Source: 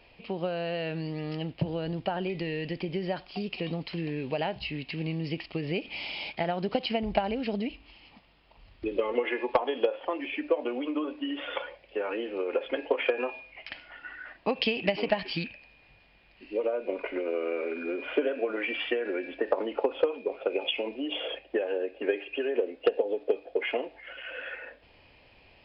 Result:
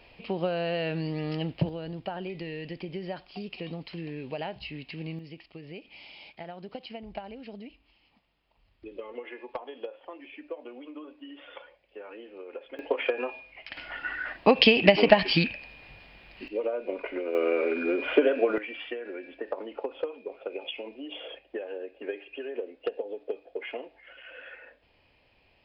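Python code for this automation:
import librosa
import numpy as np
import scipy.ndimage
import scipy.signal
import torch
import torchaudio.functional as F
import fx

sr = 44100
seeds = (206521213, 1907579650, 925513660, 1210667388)

y = fx.gain(x, sr, db=fx.steps((0.0, 2.5), (1.69, -4.5), (5.19, -12.0), (12.79, -1.0), (13.77, 9.0), (16.48, -1.0), (17.35, 5.5), (18.58, -7.0)))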